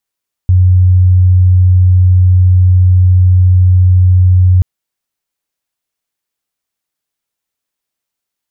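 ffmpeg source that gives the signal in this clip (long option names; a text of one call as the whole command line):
ffmpeg -f lavfi -i "aevalsrc='0.668*sin(2*PI*91.4*t)':duration=4.13:sample_rate=44100" out.wav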